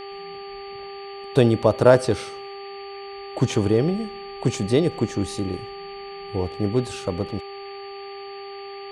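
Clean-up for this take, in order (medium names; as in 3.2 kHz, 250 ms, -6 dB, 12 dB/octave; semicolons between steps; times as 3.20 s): de-hum 396.7 Hz, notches 3; band-stop 4.5 kHz, Q 30; noise print and reduce 30 dB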